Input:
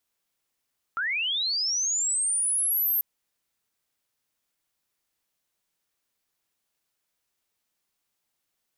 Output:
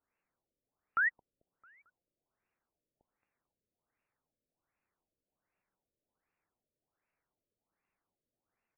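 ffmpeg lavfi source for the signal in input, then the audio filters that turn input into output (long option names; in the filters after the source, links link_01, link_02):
-f lavfi -i "aevalsrc='pow(10,(-25+3.5*t/2.04)/20)*sin(2*PI*(1300*t+11700*t*t/(2*2.04)))':duration=2.04:sample_rate=44100"
-filter_complex "[0:a]asplit=2[link_01][link_02];[link_02]adelay=222,lowpass=frequency=2000:poles=1,volume=-13.5dB,asplit=2[link_03][link_04];[link_04]adelay=222,lowpass=frequency=2000:poles=1,volume=0.47,asplit=2[link_05][link_06];[link_06]adelay=222,lowpass=frequency=2000:poles=1,volume=0.47,asplit=2[link_07][link_08];[link_08]adelay=222,lowpass=frequency=2000:poles=1,volume=0.47,asplit=2[link_09][link_10];[link_10]adelay=222,lowpass=frequency=2000:poles=1,volume=0.47[link_11];[link_01][link_03][link_05][link_07][link_09][link_11]amix=inputs=6:normalize=0,afftfilt=real='re*lt(b*sr/1024,610*pow(2900/610,0.5+0.5*sin(2*PI*1.3*pts/sr)))':imag='im*lt(b*sr/1024,610*pow(2900/610,0.5+0.5*sin(2*PI*1.3*pts/sr)))':win_size=1024:overlap=0.75"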